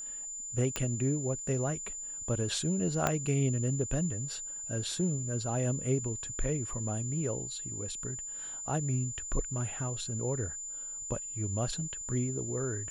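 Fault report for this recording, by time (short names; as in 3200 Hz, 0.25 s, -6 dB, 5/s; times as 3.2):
tone 7100 Hz -38 dBFS
0.76 pop -15 dBFS
3.07 pop -12 dBFS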